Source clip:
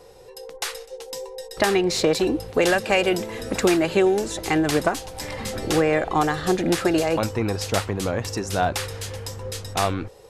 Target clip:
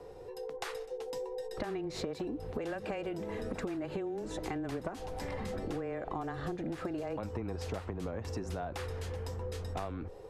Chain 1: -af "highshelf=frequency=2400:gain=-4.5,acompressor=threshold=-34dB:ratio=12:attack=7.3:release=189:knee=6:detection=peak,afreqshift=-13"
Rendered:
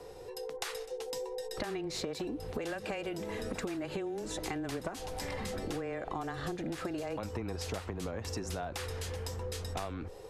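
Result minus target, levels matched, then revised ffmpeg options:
4,000 Hz band +5.5 dB
-af "highshelf=frequency=2400:gain=-15.5,acompressor=threshold=-34dB:ratio=12:attack=7.3:release=189:knee=6:detection=peak,afreqshift=-13"

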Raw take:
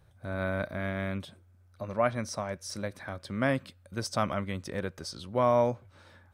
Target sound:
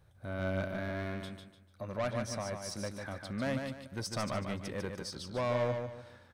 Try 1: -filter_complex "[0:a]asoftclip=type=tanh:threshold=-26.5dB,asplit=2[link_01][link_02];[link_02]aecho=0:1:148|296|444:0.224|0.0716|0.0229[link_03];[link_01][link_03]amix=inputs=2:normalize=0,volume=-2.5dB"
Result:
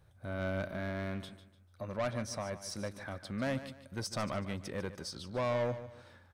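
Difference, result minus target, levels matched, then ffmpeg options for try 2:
echo-to-direct −7.5 dB
-filter_complex "[0:a]asoftclip=type=tanh:threshold=-26.5dB,asplit=2[link_01][link_02];[link_02]aecho=0:1:148|296|444|592:0.531|0.17|0.0544|0.0174[link_03];[link_01][link_03]amix=inputs=2:normalize=0,volume=-2.5dB"

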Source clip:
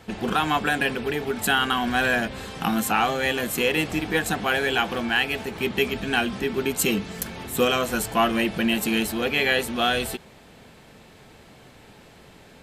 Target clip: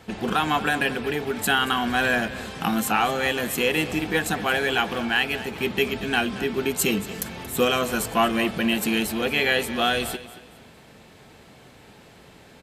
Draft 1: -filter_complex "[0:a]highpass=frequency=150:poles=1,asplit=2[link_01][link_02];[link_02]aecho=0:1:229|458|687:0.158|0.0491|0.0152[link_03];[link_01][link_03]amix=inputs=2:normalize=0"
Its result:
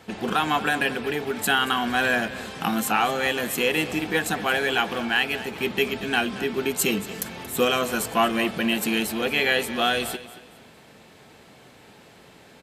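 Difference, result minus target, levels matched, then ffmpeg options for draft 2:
125 Hz band −2.5 dB
-filter_complex "[0:a]highpass=frequency=40:poles=1,asplit=2[link_01][link_02];[link_02]aecho=0:1:229|458|687:0.158|0.0491|0.0152[link_03];[link_01][link_03]amix=inputs=2:normalize=0"

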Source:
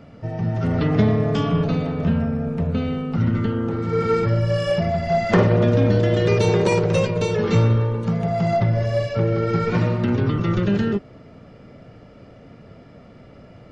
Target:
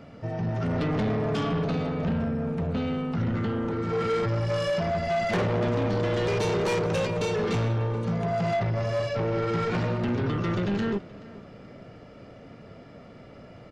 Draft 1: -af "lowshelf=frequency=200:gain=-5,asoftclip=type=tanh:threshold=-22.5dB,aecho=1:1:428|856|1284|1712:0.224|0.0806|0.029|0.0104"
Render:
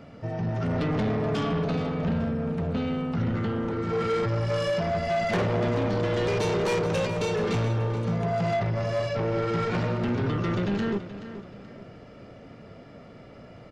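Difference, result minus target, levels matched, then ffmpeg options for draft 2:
echo-to-direct +8 dB
-af "lowshelf=frequency=200:gain=-5,asoftclip=type=tanh:threshold=-22.5dB,aecho=1:1:428|856|1284:0.0891|0.0321|0.0116"

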